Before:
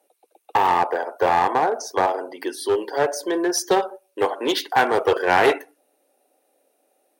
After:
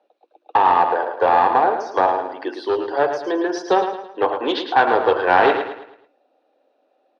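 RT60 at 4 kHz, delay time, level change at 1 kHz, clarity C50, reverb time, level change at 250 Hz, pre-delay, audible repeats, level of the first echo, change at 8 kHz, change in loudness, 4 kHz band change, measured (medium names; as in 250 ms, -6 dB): no reverb, 109 ms, +4.0 dB, no reverb, no reverb, +1.0 dB, no reverb, 4, -8.0 dB, under -10 dB, +2.5 dB, -1.5 dB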